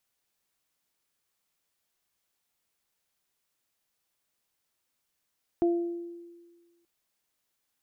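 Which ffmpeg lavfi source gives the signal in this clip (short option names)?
-f lavfi -i "aevalsrc='0.1*pow(10,-3*t/1.51)*sin(2*PI*343*t)+0.0316*pow(10,-3*t/0.68)*sin(2*PI*686*t)':d=1.23:s=44100"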